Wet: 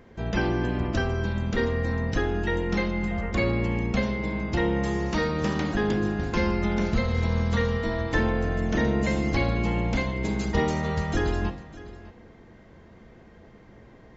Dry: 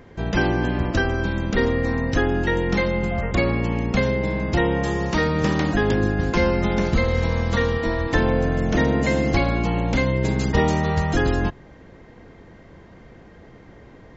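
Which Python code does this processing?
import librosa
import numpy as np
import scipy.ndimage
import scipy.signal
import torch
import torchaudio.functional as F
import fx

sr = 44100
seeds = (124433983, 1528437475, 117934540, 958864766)

p1 = x + fx.echo_single(x, sr, ms=604, db=-18.0, dry=0)
p2 = fx.rev_fdn(p1, sr, rt60_s=0.71, lf_ratio=1.0, hf_ratio=0.95, size_ms=27.0, drr_db=8.5)
y = p2 * 10.0 ** (-5.5 / 20.0)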